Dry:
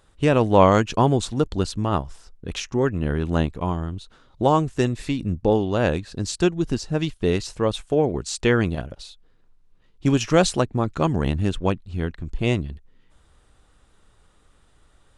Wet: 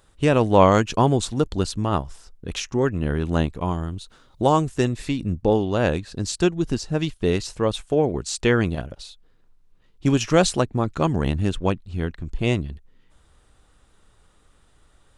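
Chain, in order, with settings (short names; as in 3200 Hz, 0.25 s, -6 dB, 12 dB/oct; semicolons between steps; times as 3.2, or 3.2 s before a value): high shelf 7200 Hz +5 dB, from 3.71 s +11.5 dB, from 4.76 s +2.5 dB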